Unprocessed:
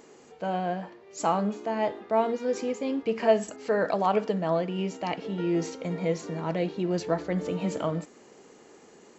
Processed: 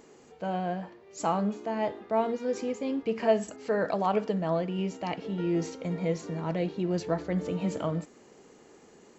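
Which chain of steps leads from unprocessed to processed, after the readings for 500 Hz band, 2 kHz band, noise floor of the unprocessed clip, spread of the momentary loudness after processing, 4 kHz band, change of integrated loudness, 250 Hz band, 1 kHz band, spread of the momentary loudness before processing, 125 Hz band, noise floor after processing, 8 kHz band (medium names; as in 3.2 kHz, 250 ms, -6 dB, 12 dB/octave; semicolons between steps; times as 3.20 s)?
-2.5 dB, -3.0 dB, -54 dBFS, 7 LU, -3.0 dB, -2.0 dB, -0.5 dB, -3.0 dB, 7 LU, 0.0 dB, -56 dBFS, no reading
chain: bass shelf 140 Hz +8 dB; trim -3 dB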